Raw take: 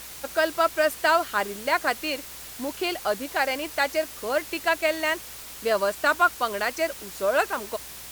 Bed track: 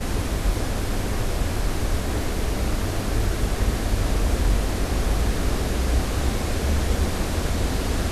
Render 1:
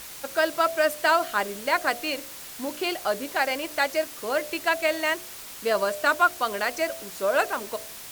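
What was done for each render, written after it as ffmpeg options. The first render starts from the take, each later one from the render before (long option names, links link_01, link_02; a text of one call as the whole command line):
ffmpeg -i in.wav -af "bandreject=frequency=60:width_type=h:width=4,bandreject=frequency=120:width_type=h:width=4,bandreject=frequency=180:width_type=h:width=4,bandreject=frequency=240:width_type=h:width=4,bandreject=frequency=300:width_type=h:width=4,bandreject=frequency=360:width_type=h:width=4,bandreject=frequency=420:width_type=h:width=4,bandreject=frequency=480:width_type=h:width=4,bandreject=frequency=540:width_type=h:width=4,bandreject=frequency=600:width_type=h:width=4,bandreject=frequency=660:width_type=h:width=4,bandreject=frequency=720:width_type=h:width=4" out.wav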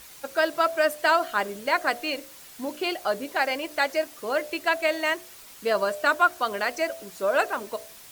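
ffmpeg -i in.wav -af "afftdn=noise_reduction=7:noise_floor=-41" out.wav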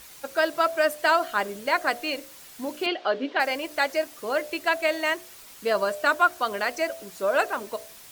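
ffmpeg -i in.wav -filter_complex "[0:a]asettb=1/sr,asplit=3[link_01][link_02][link_03];[link_01]atrim=end=2.864[link_04];[link_02]atrim=start=2.86:end=3.4,asetpts=PTS-STARTPTS,afade=type=in:duration=0.004:curve=qsin,afade=type=out:start_time=0.536:duration=0.004:curve=qsin,highpass=230,equalizer=frequency=270:width_type=q:width=4:gain=8,equalizer=frequency=450:width_type=q:width=4:gain=5,equalizer=frequency=1600:width_type=q:width=4:gain=3,equalizer=frequency=3100:width_type=q:width=4:gain=6,lowpass=frequency=4400:width=0.5412,lowpass=frequency=4400:width=1.3066[link_05];[link_03]atrim=start=3.396[link_06];[link_04][link_05]acrossfade=duration=0.004:curve1=hsin:curve2=qsin[link_07];[link_07][link_06]acrossfade=duration=0.004:curve1=qsin:curve2=hsin" out.wav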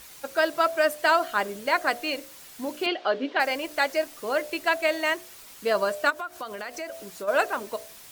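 ffmpeg -i in.wav -filter_complex "[0:a]asettb=1/sr,asplit=3[link_01][link_02][link_03];[link_01]atrim=end=3.414[link_04];[link_02]atrim=start=3.41:end=4.75,asetpts=PTS-STARTPTS,afade=type=in:duration=0.004:curve=qsin,afade=type=out:start_time=1.336:duration=0.004:curve=qsin,acrusher=bits=9:dc=4:mix=0:aa=0.000001[link_05];[link_03]atrim=start=4.746[link_06];[link_04][link_05]acrossfade=duration=0.004:curve1=hsin:curve2=qsin[link_07];[link_07][link_06]acrossfade=duration=0.004:curve1=qsin:curve2=hsin,asplit=3[link_08][link_09][link_10];[link_08]afade=type=out:start_time=6.09:duration=0.02[link_11];[link_09]acompressor=threshold=-32dB:ratio=4:attack=3.2:release=140:knee=1:detection=peak,afade=type=in:start_time=6.09:duration=0.02,afade=type=out:start_time=7.27:duration=0.02[link_12];[link_10]afade=type=in:start_time=7.27:duration=0.02[link_13];[link_11][link_12][link_13]amix=inputs=3:normalize=0" out.wav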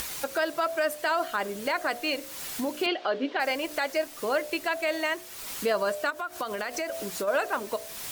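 ffmpeg -i in.wav -af "acompressor=mode=upward:threshold=-25dB:ratio=2.5,alimiter=limit=-17dB:level=0:latency=1:release=59" out.wav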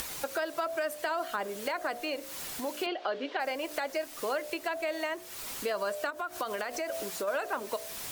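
ffmpeg -i in.wav -filter_complex "[0:a]acrossover=split=370|1100[link_01][link_02][link_03];[link_01]acompressor=threshold=-47dB:ratio=4[link_04];[link_02]acompressor=threshold=-32dB:ratio=4[link_05];[link_03]acompressor=threshold=-37dB:ratio=4[link_06];[link_04][link_05][link_06]amix=inputs=3:normalize=0" out.wav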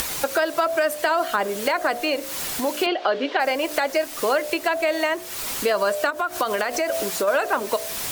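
ffmpeg -i in.wav -af "volume=11dB" out.wav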